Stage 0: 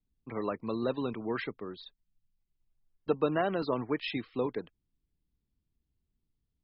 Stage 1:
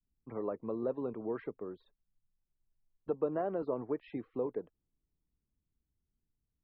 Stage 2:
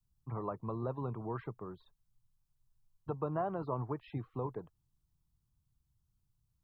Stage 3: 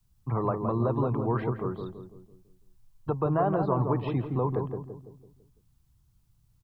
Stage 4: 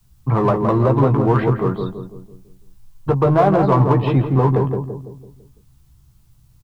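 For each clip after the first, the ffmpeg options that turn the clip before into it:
-af "lowpass=1200,adynamicequalizer=threshold=0.00708:dfrequency=490:dqfactor=0.97:tfrequency=490:tqfactor=0.97:attack=5:release=100:ratio=0.375:range=4:mode=boostabove:tftype=bell,acompressor=threshold=0.0158:ratio=1.5,volume=0.631"
-af "equalizer=f=125:t=o:w=1:g=10,equalizer=f=250:t=o:w=1:g=-9,equalizer=f=500:t=o:w=1:g=-11,equalizer=f=1000:t=o:w=1:g=6,equalizer=f=2000:t=o:w=1:g=-9,volume=1.78"
-filter_complex "[0:a]asplit=2[s0][s1];[s1]alimiter=level_in=2:limit=0.0631:level=0:latency=1,volume=0.501,volume=1.12[s2];[s0][s2]amix=inputs=2:normalize=0,asplit=2[s3][s4];[s4]adelay=167,lowpass=f=850:p=1,volume=0.631,asplit=2[s5][s6];[s6]adelay=167,lowpass=f=850:p=1,volume=0.49,asplit=2[s7][s8];[s8]adelay=167,lowpass=f=850:p=1,volume=0.49,asplit=2[s9][s10];[s10]adelay=167,lowpass=f=850:p=1,volume=0.49,asplit=2[s11][s12];[s12]adelay=167,lowpass=f=850:p=1,volume=0.49,asplit=2[s13][s14];[s14]adelay=167,lowpass=f=850:p=1,volume=0.49[s15];[s3][s5][s7][s9][s11][s13][s15]amix=inputs=7:normalize=0,volume=1.68"
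-filter_complex "[0:a]asplit=2[s0][s1];[s1]volume=25.1,asoftclip=hard,volume=0.0398,volume=0.631[s2];[s0][s2]amix=inputs=2:normalize=0,asplit=2[s3][s4];[s4]adelay=15,volume=0.447[s5];[s3][s5]amix=inputs=2:normalize=0,volume=2.51"

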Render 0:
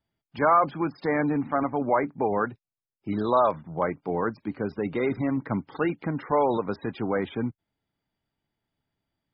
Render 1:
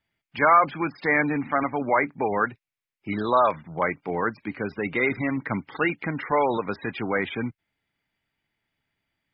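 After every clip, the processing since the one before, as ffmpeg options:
-af "equalizer=f=2200:t=o:w=1.2:g=13.5,volume=0.891"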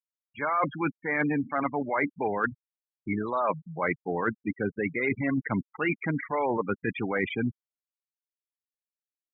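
-af "afftfilt=real='re*gte(hypot(re,im),0.0562)':imag='im*gte(hypot(re,im),0.0562)':win_size=1024:overlap=0.75,areverse,acompressor=threshold=0.0447:ratio=12,areverse,volume=1.5"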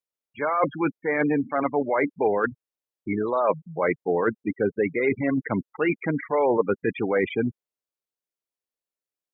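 -af "equalizer=f=470:t=o:w=1.2:g=9"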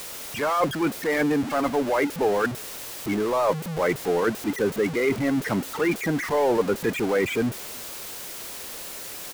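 -filter_complex "[0:a]aeval=exprs='val(0)+0.5*0.0562*sgn(val(0))':c=same,asplit=2[s0][s1];[s1]adelay=314.9,volume=0.0316,highshelf=f=4000:g=-7.08[s2];[s0][s2]amix=inputs=2:normalize=0,volume=0.794"

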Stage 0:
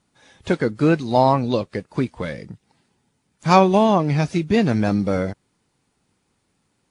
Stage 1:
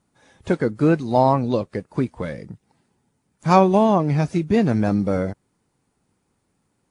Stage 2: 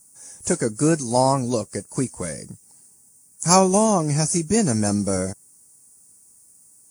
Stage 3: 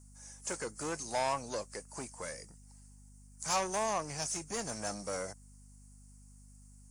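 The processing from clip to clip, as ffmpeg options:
-af "equalizer=f=3600:t=o:w=2:g=-7"
-af "aexciter=amount=14.1:drive=9.6:freq=5800,volume=0.794"
-filter_complex "[0:a]asoftclip=type=tanh:threshold=0.126,acrossover=split=540 7600:gain=0.141 1 0.141[s0][s1][s2];[s0][s1][s2]amix=inputs=3:normalize=0,aeval=exprs='val(0)+0.00316*(sin(2*PI*50*n/s)+sin(2*PI*2*50*n/s)/2+sin(2*PI*3*50*n/s)/3+sin(2*PI*4*50*n/s)/4+sin(2*PI*5*50*n/s)/5)':c=same,volume=0.531"

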